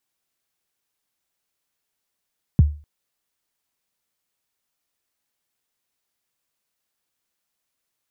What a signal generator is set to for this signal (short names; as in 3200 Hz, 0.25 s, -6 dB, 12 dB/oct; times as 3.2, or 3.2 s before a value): kick drum length 0.25 s, from 190 Hz, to 74 Hz, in 22 ms, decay 0.35 s, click off, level -6 dB